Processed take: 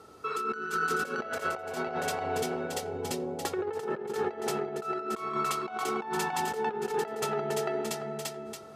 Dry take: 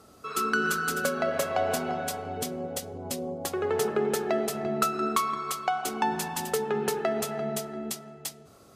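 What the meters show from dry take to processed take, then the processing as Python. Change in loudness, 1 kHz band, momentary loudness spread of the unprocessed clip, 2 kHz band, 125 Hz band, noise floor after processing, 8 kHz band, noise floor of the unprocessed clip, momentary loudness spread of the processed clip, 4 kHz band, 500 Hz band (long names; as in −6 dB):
−3.0 dB, −2.0 dB, 8 LU, −3.0 dB, −3.5 dB, −44 dBFS, −5.5 dB, −54 dBFS, 4 LU, −3.5 dB, −3.0 dB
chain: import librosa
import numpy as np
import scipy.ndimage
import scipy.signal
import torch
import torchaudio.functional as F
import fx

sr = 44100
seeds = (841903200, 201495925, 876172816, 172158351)

p1 = fx.lowpass(x, sr, hz=3600.0, slope=6)
p2 = p1 + 10.0 ** (-7.0 / 20.0) * np.pad(p1, (int(624 * sr / 1000.0), 0))[:len(p1)]
p3 = fx.over_compress(p2, sr, threshold_db=-31.0, ratio=-0.5)
p4 = fx.highpass(p3, sr, hz=150.0, slope=6)
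p5 = fx.notch(p4, sr, hz=560.0, q=12.0)
p6 = p5 + 0.43 * np.pad(p5, (int(2.2 * sr / 1000.0), 0))[:len(p5)]
y = p6 + fx.echo_banded(p6, sr, ms=88, feedback_pct=74, hz=640.0, wet_db=-14, dry=0)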